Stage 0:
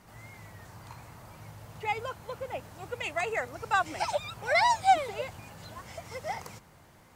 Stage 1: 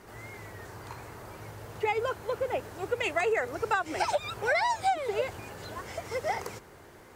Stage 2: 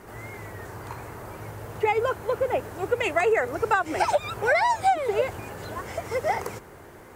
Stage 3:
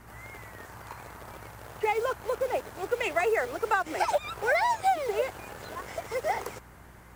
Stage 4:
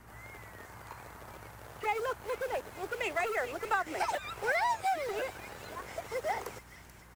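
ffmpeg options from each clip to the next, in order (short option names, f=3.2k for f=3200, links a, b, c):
-af "equalizer=f=160:t=o:w=0.67:g=-5,equalizer=f=400:t=o:w=0.67:g=11,equalizer=f=1.6k:t=o:w=0.67:g=4,acompressor=threshold=-26dB:ratio=16,volume=3dB"
-af "equalizer=f=4.4k:w=0.81:g=-6,volume=6dB"
-filter_complex "[0:a]acrossover=split=300|590|6200[a][b][c][d];[a]acompressor=threshold=-46dB:ratio=6[e];[b]acrusher=bits=6:mix=0:aa=0.000001[f];[e][f][c][d]amix=inputs=4:normalize=0,aeval=exprs='val(0)+0.00316*(sin(2*PI*60*n/s)+sin(2*PI*2*60*n/s)/2+sin(2*PI*3*60*n/s)/3+sin(2*PI*4*60*n/s)/4+sin(2*PI*5*60*n/s)/5)':c=same,volume=-3.5dB"
-filter_complex "[0:a]acrossover=split=820|1600[a][b][c];[a]aeval=exprs='0.0447*(abs(mod(val(0)/0.0447+3,4)-2)-1)':c=same[d];[c]aecho=1:1:435|870|1305|1740|2175|2610:0.299|0.152|0.0776|0.0396|0.0202|0.0103[e];[d][b][e]amix=inputs=3:normalize=0,volume=-4dB" -ar 48000 -c:a aac -b:a 192k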